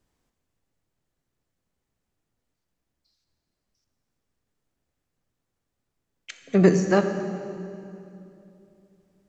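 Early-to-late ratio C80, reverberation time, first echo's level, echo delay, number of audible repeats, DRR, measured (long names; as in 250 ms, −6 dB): 9.0 dB, 2.8 s, no echo audible, no echo audible, no echo audible, 7.0 dB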